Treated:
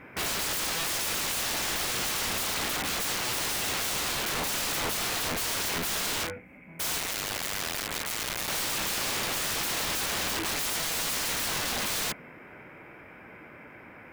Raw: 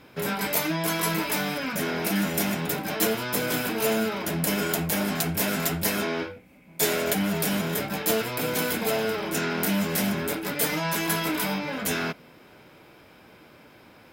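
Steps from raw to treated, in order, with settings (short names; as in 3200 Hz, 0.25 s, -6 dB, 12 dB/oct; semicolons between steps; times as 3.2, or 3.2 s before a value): 6.98–8.48 cycle switcher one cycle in 2, muted; resonant high shelf 2900 Hz -11 dB, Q 3; wrapped overs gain 27.5 dB; gain +2 dB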